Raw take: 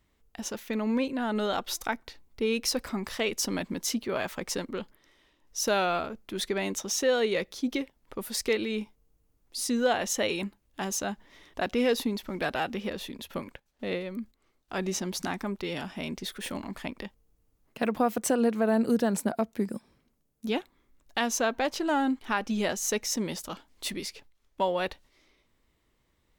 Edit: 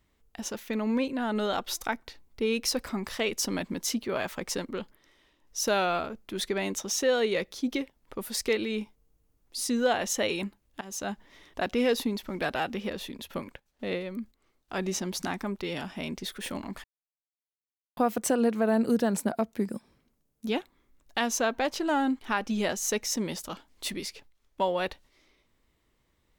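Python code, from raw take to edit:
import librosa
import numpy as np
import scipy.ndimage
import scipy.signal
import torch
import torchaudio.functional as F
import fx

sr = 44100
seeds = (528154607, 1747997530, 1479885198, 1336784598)

y = fx.edit(x, sr, fx.fade_in_from(start_s=10.81, length_s=0.3, floor_db=-20.0),
    fx.silence(start_s=16.84, length_s=1.13), tone=tone)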